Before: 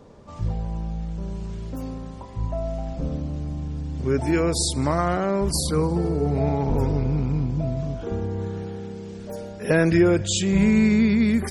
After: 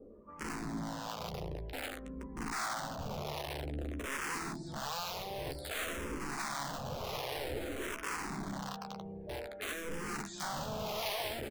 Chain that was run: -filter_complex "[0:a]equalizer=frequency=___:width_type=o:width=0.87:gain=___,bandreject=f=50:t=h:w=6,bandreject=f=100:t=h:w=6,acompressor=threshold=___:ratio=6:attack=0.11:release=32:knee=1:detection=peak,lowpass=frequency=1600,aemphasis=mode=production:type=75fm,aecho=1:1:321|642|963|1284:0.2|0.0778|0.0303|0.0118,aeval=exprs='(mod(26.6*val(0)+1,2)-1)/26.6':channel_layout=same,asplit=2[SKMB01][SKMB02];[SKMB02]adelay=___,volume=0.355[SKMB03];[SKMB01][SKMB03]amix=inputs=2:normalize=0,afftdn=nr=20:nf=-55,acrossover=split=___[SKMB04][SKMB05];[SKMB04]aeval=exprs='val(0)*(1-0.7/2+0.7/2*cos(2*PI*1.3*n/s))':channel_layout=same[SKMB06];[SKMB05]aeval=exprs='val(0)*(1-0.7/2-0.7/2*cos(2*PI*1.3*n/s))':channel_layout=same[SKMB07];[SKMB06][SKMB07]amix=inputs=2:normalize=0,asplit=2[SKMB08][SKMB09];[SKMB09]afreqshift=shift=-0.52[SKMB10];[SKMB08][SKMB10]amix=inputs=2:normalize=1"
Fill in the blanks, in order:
78, -8.5, 0.0501, 14, 590